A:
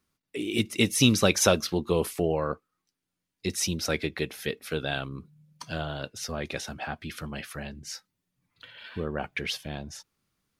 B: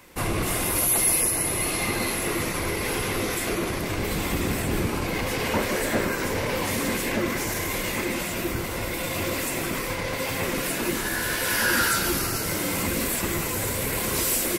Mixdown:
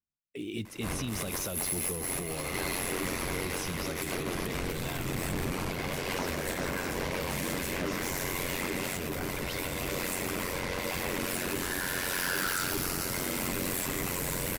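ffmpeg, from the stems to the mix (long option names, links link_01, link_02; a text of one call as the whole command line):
ffmpeg -i stem1.wav -i stem2.wav -filter_complex "[0:a]agate=range=-17dB:threshold=-44dB:ratio=16:detection=peak,acrusher=bits=7:mode=log:mix=0:aa=0.000001,lowshelf=frequency=230:gain=8.5,volume=-9dB[link_01];[1:a]asoftclip=type=tanh:threshold=-26.5dB,aeval=exprs='val(0)*sin(2*PI*45*n/s)':channel_layout=same,adelay=650,volume=1dB[link_02];[link_01][link_02]amix=inputs=2:normalize=0,alimiter=level_in=1.5dB:limit=-24dB:level=0:latency=1:release=43,volume=-1.5dB" out.wav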